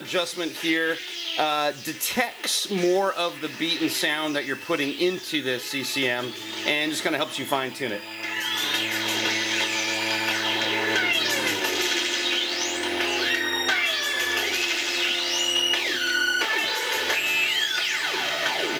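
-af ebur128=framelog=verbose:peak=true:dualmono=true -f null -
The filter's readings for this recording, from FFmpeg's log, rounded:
Integrated loudness:
  I:         -20.4 LUFS
  Threshold: -30.4 LUFS
Loudness range:
  LRA:         3.5 LU
  Threshold: -40.4 LUFS
  LRA low:   -22.3 LUFS
  LRA high:  -18.8 LUFS
True peak:
  Peak:       -8.6 dBFS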